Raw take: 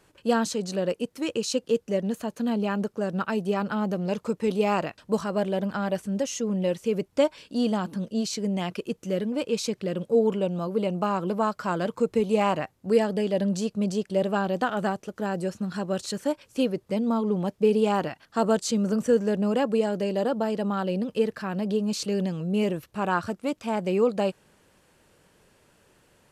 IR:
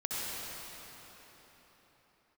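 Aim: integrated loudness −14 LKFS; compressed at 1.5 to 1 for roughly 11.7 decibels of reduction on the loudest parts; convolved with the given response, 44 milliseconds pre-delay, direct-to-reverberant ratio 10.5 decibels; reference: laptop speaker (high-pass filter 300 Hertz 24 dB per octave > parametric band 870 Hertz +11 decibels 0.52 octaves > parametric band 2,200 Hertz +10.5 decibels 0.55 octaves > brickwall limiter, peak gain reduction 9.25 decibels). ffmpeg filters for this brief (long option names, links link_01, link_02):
-filter_complex "[0:a]acompressor=threshold=-50dB:ratio=1.5,asplit=2[link_01][link_02];[1:a]atrim=start_sample=2205,adelay=44[link_03];[link_02][link_03]afir=irnorm=-1:irlink=0,volume=-16.5dB[link_04];[link_01][link_04]amix=inputs=2:normalize=0,highpass=frequency=300:width=0.5412,highpass=frequency=300:width=1.3066,equalizer=frequency=870:width_type=o:width=0.52:gain=11,equalizer=frequency=2200:width_type=o:width=0.55:gain=10.5,volume=23.5dB,alimiter=limit=-2dB:level=0:latency=1"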